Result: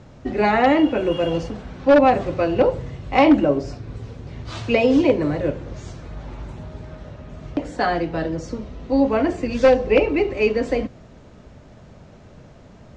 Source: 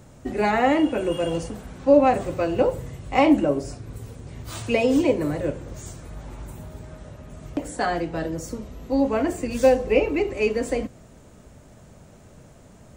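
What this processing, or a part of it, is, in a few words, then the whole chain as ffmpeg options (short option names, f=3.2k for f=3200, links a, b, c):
synthesiser wavefolder: -af "aeval=exprs='0.335*(abs(mod(val(0)/0.335+3,4)-2)-1)':c=same,lowpass=f=5.3k:w=0.5412,lowpass=f=5.3k:w=1.3066,volume=3.5dB"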